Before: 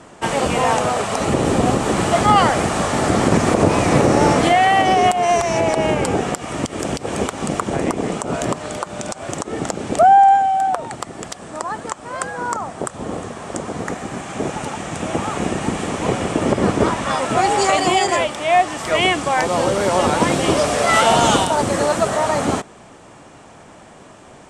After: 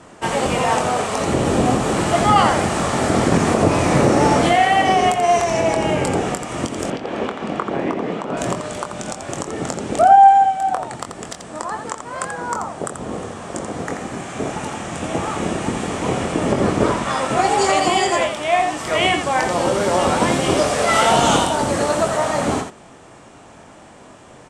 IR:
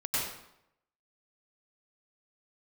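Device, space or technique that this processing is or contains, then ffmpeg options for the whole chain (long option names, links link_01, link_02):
slapback doubling: -filter_complex "[0:a]asplit=3[link_01][link_02][link_03];[link_02]adelay=23,volume=-7dB[link_04];[link_03]adelay=85,volume=-7dB[link_05];[link_01][link_04][link_05]amix=inputs=3:normalize=0,asettb=1/sr,asplit=3[link_06][link_07][link_08];[link_06]atrim=end=6.904[link_09];[link_07]atrim=start=6.9:end=8.37,asetpts=PTS-STARTPTS,afade=type=in:duration=0.004:curve=qsin,afade=type=out:start_time=1.466:duration=0.004:curve=qsin,acrossover=split=160 4100:gain=0.251 1 0.0708[link_10][link_11][link_12];[link_10][link_11][link_12]amix=inputs=3:normalize=0[link_13];[link_08]atrim=start=8.366[link_14];[link_09][link_13]acrossfade=duration=0.004:curve1=hsin:curve2=qsin[link_15];[link_15][link_14]acrossfade=duration=0.004:curve1=qsin:curve2=hsin,volume=-2dB"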